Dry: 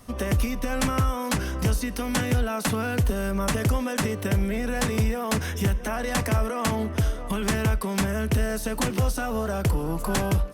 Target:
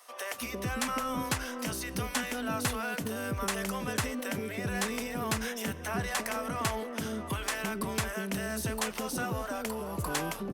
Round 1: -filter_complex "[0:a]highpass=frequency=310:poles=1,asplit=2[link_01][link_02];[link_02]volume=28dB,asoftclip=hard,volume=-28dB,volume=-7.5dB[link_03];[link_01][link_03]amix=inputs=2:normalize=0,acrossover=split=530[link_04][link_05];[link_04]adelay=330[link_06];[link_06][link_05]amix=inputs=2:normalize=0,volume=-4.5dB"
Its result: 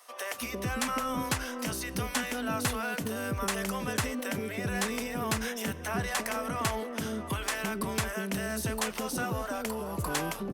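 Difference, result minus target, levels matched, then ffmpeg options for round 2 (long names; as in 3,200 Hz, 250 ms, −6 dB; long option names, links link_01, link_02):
gain into a clipping stage and back: distortion −5 dB
-filter_complex "[0:a]highpass=frequency=310:poles=1,asplit=2[link_01][link_02];[link_02]volume=35.5dB,asoftclip=hard,volume=-35.5dB,volume=-7.5dB[link_03];[link_01][link_03]amix=inputs=2:normalize=0,acrossover=split=530[link_04][link_05];[link_04]adelay=330[link_06];[link_06][link_05]amix=inputs=2:normalize=0,volume=-4.5dB"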